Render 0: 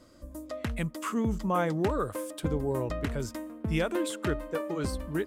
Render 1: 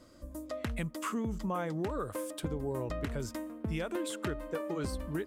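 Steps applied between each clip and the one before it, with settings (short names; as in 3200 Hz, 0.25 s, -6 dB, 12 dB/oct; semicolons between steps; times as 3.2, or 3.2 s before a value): compressor, threshold -30 dBFS, peak gain reduction 8 dB; gain -1 dB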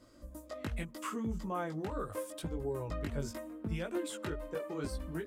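chorus voices 2, 0.76 Hz, delay 19 ms, depth 2.3 ms; ending taper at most 220 dB/s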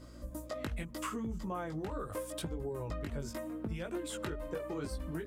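compressor, threshold -41 dBFS, peak gain reduction 10 dB; hum 60 Hz, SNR 15 dB; gain +5.5 dB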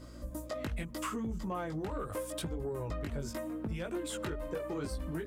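soft clip -29.5 dBFS, distortion -22 dB; gain +2.5 dB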